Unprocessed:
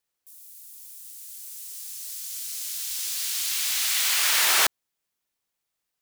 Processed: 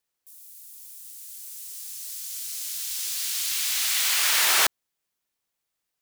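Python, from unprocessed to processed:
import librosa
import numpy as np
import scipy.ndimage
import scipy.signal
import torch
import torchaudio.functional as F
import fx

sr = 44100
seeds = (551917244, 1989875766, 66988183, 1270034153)

y = fx.highpass(x, sr, hz=fx.line((1.52, 150.0), (3.74, 590.0)), slope=6, at=(1.52, 3.74), fade=0.02)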